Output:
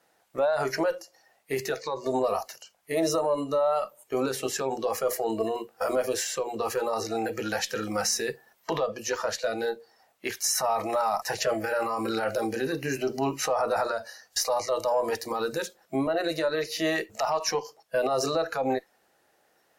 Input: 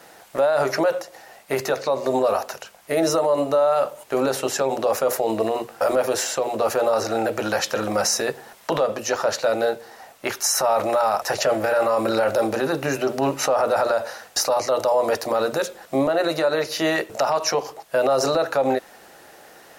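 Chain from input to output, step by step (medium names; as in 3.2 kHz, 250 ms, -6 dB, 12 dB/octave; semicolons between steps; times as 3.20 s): spectral noise reduction 15 dB; Chebyshev shaper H 4 -33 dB, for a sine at -10 dBFS; trim -5 dB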